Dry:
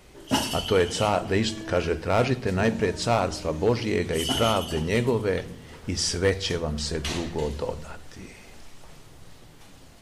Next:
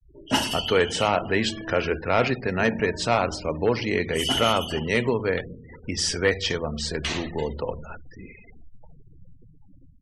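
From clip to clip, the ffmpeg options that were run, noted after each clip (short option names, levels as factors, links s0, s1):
-filter_complex "[0:a]afftfilt=real='re*gte(hypot(re,im),0.0126)':imag='im*gte(hypot(re,im),0.0126)':win_size=1024:overlap=0.75,equalizer=f=2000:w=0.94:g=5.5,acrossover=split=160[s0][s1];[s0]alimiter=level_in=2.11:limit=0.0631:level=0:latency=1:release=104,volume=0.473[s2];[s2][s1]amix=inputs=2:normalize=0"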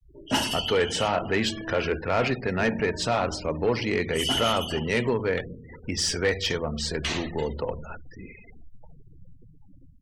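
-af "asoftclip=type=tanh:threshold=0.178"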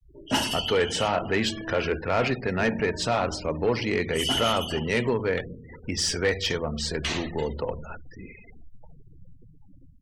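-af anull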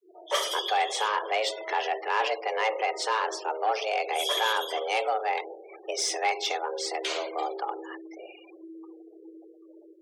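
-af "afreqshift=320,volume=0.75"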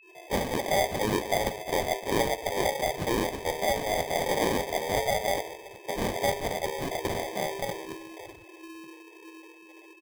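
-af "aecho=1:1:376:0.0891,acrusher=samples=32:mix=1:aa=0.000001,aeval=exprs='val(0)+0.002*sin(2*PI*2600*n/s)':c=same"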